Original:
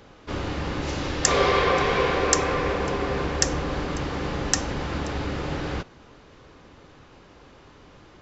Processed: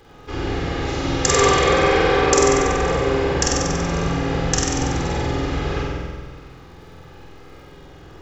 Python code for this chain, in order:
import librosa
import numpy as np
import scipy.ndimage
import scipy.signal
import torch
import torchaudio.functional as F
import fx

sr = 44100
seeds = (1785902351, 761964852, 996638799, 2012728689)

y = fx.dmg_crackle(x, sr, seeds[0], per_s=76.0, level_db=-47.0)
y = fx.room_flutter(y, sr, wall_m=8.1, rt60_s=1.4)
y = fx.room_shoebox(y, sr, seeds[1], volume_m3=3900.0, walls='furnished', distance_m=3.9)
y = y * 10.0 ** (-2.0 / 20.0)